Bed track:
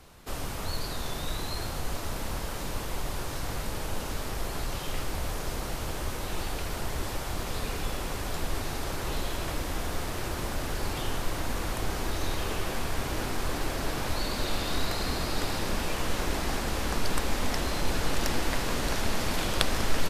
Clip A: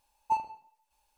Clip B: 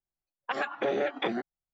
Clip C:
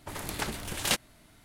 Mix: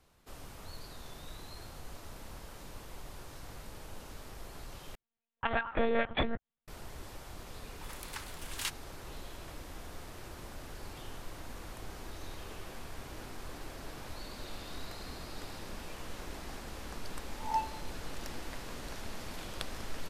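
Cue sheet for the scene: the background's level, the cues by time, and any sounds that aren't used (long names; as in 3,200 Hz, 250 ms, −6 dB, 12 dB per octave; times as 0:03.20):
bed track −14 dB
0:04.95: overwrite with B + one-pitch LPC vocoder at 8 kHz 230 Hz
0:07.74: mix in C −9 dB + Butterworth high-pass 850 Hz 72 dB per octave
0:17.24: mix in A −4.5 dB + peak hold with a rise ahead of every peak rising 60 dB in 0.39 s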